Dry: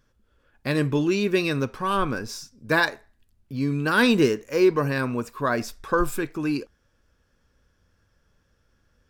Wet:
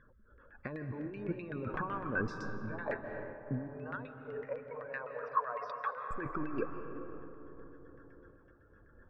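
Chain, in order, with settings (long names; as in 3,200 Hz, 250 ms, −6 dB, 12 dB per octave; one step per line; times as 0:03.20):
gate on every frequency bin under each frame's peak −25 dB strong
parametric band 2,500 Hz +2.5 dB 1.1 octaves
compressor whose output falls as the input rises −34 dBFS, ratio −1
auto-filter low-pass saw down 7.9 Hz 620–2,100 Hz
0:03.68–0:06.11: linear-phase brick-wall band-pass 410–6,100 Hz
convolution reverb RT60 4.3 s, pre-delay 115 ms, DRR 6.5 dB
amplitude modulation by smooth noise, depth 55%
level −4 dB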